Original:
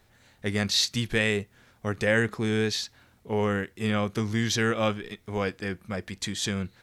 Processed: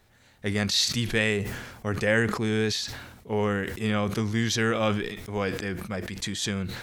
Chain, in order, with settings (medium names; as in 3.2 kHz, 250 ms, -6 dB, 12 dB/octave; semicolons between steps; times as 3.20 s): de-esser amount 35%; 1.25–2.39 s: band-stop 3.7 kHz, Q 13; decay stretcher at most 53 dB/s